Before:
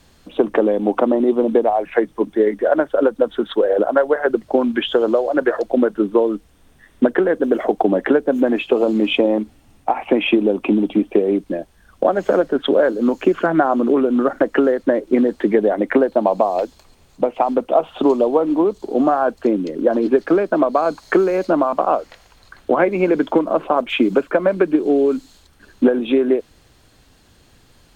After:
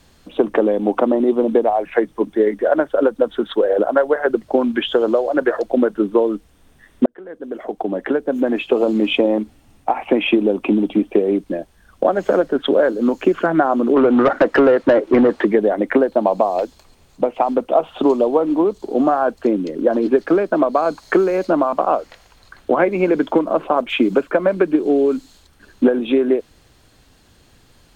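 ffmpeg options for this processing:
-filter_complex "[0:a]asettb=1/sr,asplit=3[s0][s1][s2];[s0]atrim=end=13.964[s3];[s1]atrim=start=13.96:end=15.45,asetpts=PTS-STARTPTS,afade=t=in:d=0.004:c=qsin,afade=t=out:st=1.486:d=0.004:c=qsin,asplit=2[s4][s5];[s5]highpass=f=720:p=1,volume=8.91,asoftclip=type=tanh:threshold=0.668[s6];[s4][s6]amix=inputs=2:normalize=0,lowpass=f=1500:p=1,volume=0.501[s7];[s2]atrim=start=15.446[s8];[s3][s7]acrossfade=d=0.004:c1=hsin:c2=qsin[s9];[s9][s8]acrossfade=d=0.004:c1=qsin:c2=hsin,asplit=2[s10][s11];[s10]atrim=end=7.06,asetpts=PTS-STARTPTS,afade=t=out:st=7.056:d=0.004:c=hsin[s12];[s11]atrim=start=7.06,asetpts=PTS-STARTPTS,afade=t=in:d=1.7[s13];[s12][s13]concat=n=2:v=0:a=1"

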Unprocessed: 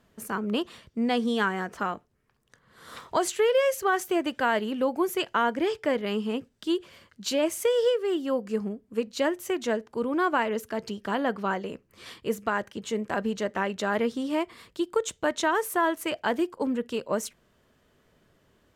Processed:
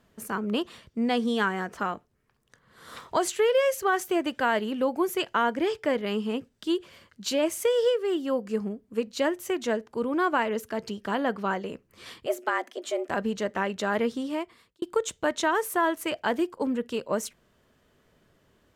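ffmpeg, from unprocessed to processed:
-filter_complex "[0:a]asettb=1/sr,asplit=3[s0][s1][s2];[s0]atrim=end=12.264[s3];[s1]atrim=start=12.26:end=13.09,asetpts=PTS-STARTPTS,afade=t=in:d=0.004:c=qsin,afade=t=out:st=0.826:d=0.004:c=qsin,afreqshift=160[s4];[s2]atrim=start=13.086[s5];[s3][s4]acrossfade=d=0.004:c1=hsin:c2=qsin[s6];[s6][s5]acrossfade=d=0.004:c1=qsin:c2=hsin,asplit=2[s7][s8];[s7]atrim=end=14.82,asetpts=PTS-STARTPTS,afade=t=out:st=14.14:d=0.68[s9];[s8]atrim=start=14.82,asetpts=PTS-STARTPTS,afade=t=in:d=0.004:c=hsin[s10];[s9][s10]concat=n=2:v=0:a=1"

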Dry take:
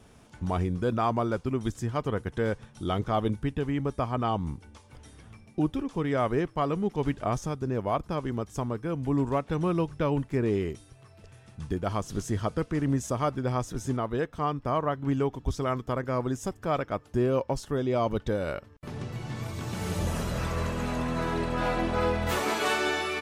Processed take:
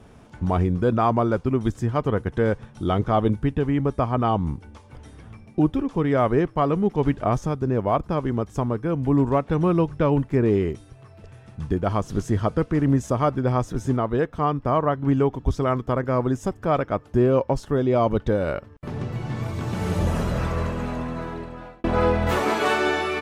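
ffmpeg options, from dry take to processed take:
-filter_complex "[0:a]asplit=2[s0][s1];[s0]atrim=end=21.84,asetpts=PTS-STARTPTS,afade=t=out:st=20.27:d=1.57[s2];[s1]atrim=start=21.84,asetpts=PTS-STARTPTS,afade=t=in:d=0.004:c=hsin[s3];[s2][s3]concat=n=2:v=0:a=1,highshelf=f=2800:g=-10,volume=2.24"

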